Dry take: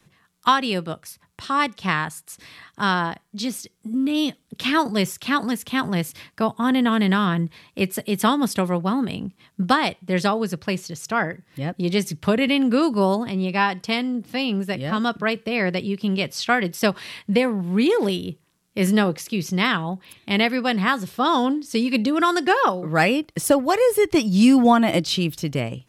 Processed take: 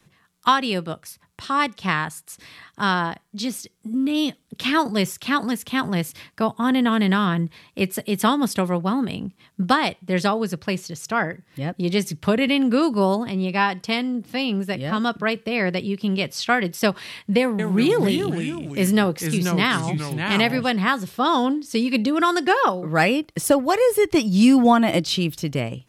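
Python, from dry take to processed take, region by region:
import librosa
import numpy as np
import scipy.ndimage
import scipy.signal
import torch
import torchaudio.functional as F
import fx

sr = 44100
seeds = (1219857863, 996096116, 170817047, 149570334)

y = fx.chain(x, sr, fx.high_shelf(hz=10000.0, db=7.5),
    fx.echo_pitch(ms=187, semitones=-3, count=2, db_per_echo=-6.0), at=(17.4, 20.7))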